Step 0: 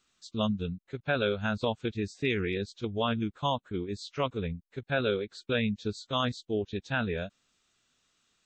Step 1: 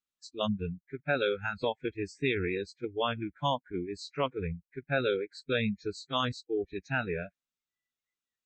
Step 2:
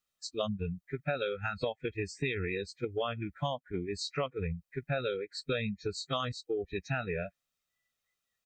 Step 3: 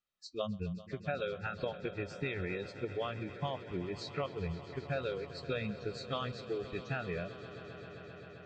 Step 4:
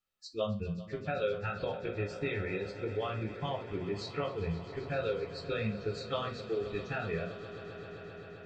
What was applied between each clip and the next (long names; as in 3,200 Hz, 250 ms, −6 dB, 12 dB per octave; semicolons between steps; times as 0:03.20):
noise reduction from a noise print of the clip's start 24 dB
comb filter 1.6 ms, depth 46%; downward compressor 6 to 1, threshold −37 dBFS, peak gain reduction 13.5 dB; level +6.5 dB
high-frequency loss of the air 120 metres; tuned comb filter 180 Hz, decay 0.16 s, harmonics all, mix 40%; on a send: echo that builds up and dies away 131 ms, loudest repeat 5, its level −17.5 dB
convolution reverb, pre-delay 6 ms, DRR 2 dB